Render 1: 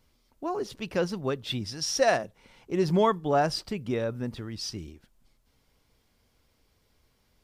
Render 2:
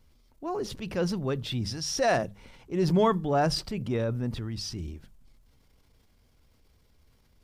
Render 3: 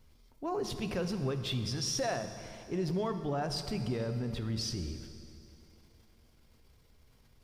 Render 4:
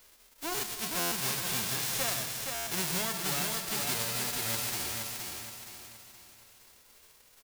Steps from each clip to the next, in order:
bass shelf 170 Hz +10 dB; hum notches 50/100/150/200 Hz; transient shaper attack -4 dB, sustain +5 dB; trim -1.5 dB
compression 6:1, threshold -31 dBFS, peak gain reduction 12.5 dB; on a send at -7 dB: reverberation RT60 2.8 s, pre-delay 4 ms
formants flattened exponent 0.1; on a send: feedback delay 471 ms, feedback 40%, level -4.5 dB; on the sum: buffer glitch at 0.99/2.54 s, samples 512, times 10

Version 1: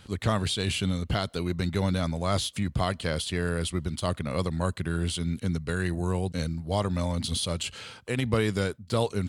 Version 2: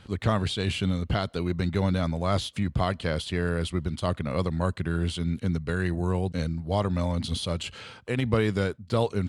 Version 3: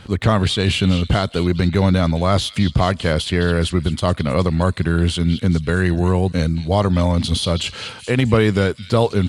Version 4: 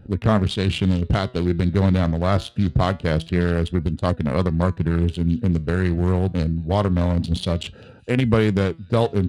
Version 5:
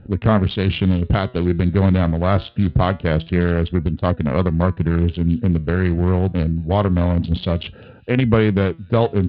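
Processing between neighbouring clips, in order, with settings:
low-pass 3.1 kHz 6 dB/octave; trim +1.5 dB
in parallel at -2.5 dB: peak limiter -17 dBFS, peak gain reduction 7.5 dB; on the sum: repeats whose band climbs or falls 213 ms, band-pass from 3.5 kHz, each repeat 0.7 oct, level -7.5 dB; trim +5.5 dB
local Wiener filter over 41 samples; flange 0.25 Hz, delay 3.5 ms, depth 6.8 ms, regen +85%; trim +2.5 dB
inverse Chebyshev low-pass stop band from 6.7 kHz, stop band 40 dB; trim +2.5 dB

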